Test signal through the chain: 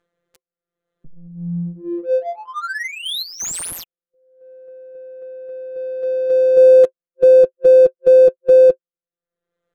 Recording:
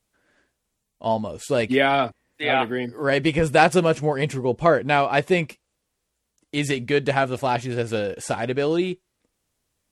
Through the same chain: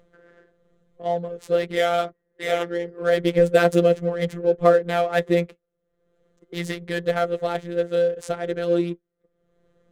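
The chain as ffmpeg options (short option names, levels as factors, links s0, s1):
-af "highshelf=f=6400:g=4,afftfilt=real='hypot(re,im)*cos(PI*b)':imag='0':win_size=1024:overlap=0.75,acompressor=mode=upward:threshold=0.0158:ratio=2.5,superequalizer=7b=2.82:9b=0.355:12b=0.501:14b=0.447,adynamicsmooth=sensitivity=5.5:basefreq=1400"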